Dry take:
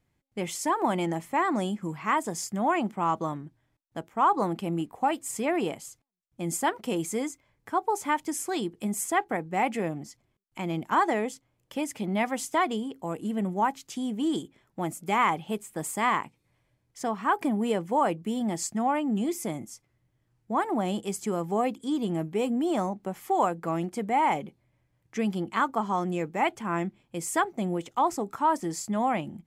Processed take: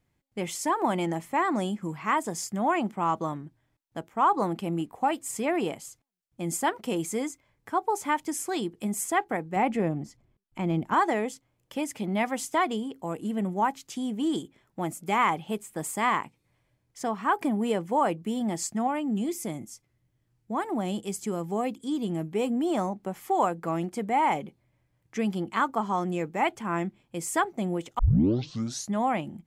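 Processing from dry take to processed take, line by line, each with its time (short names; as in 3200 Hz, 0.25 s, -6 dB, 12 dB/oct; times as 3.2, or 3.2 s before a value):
9.56–10.94 tilt -2 dB/oct
18.87–22.32 bell 990 Hz -4 dB 2.5 oct
27.99 tape start 0.94 s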